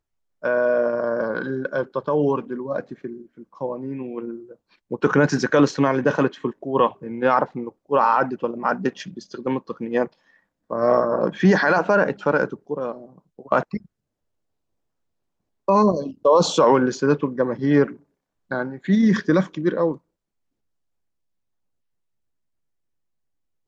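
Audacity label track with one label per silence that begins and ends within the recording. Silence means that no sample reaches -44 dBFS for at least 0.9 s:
13.860000	15.680000	silence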